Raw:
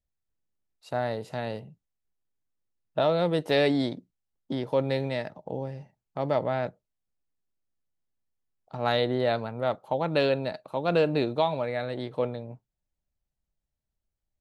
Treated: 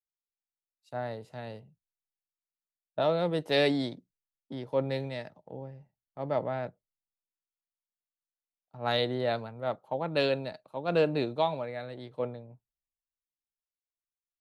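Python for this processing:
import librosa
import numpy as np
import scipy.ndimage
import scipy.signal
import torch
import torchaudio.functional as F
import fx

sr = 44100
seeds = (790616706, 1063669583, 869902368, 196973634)

y = fx.band_widen(x, sr, depth_pct=70)
y = F.gain(torch.from_numpy(y), -4.5).numpy()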